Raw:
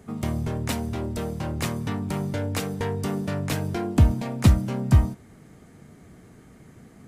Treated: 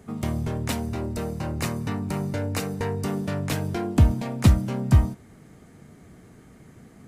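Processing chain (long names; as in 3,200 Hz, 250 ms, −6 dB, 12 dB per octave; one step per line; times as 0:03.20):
0:00.83–0:03.08: notch filter 3,300 Hz, Q 7.4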